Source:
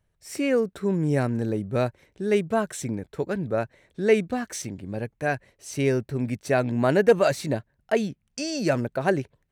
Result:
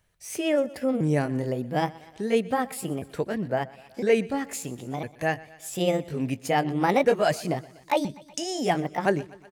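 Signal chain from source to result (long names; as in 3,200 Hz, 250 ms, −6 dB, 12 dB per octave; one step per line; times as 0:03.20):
pitch shifter swept by a sawtooth +5.5 semitones, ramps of 1,006 ms
repeating echo 123 ms, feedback 50%, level −21 dB
one half of a high-frequency compander encoder only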